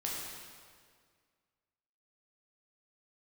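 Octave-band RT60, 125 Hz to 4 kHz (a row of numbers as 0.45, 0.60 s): 2.1, 2.0, 2.0, 1.8, 1.7, 1.6 s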